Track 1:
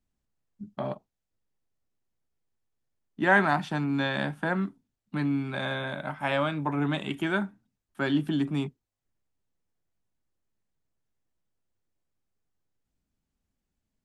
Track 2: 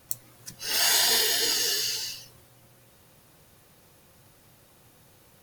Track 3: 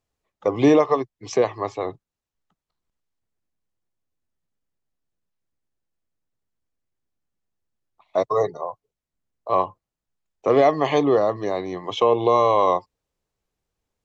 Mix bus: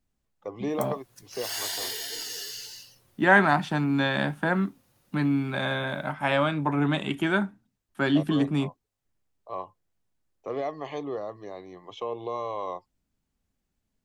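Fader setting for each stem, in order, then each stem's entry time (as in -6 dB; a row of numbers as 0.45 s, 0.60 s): +3.0 dB, -10.0 dB, -15.0 dB; 0.00 s, 0.70 s, 0.00 s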